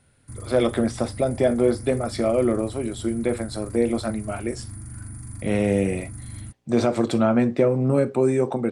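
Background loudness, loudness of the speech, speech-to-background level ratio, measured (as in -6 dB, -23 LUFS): -37.5 LUFS, -23.0 LUFS, 14.5 dB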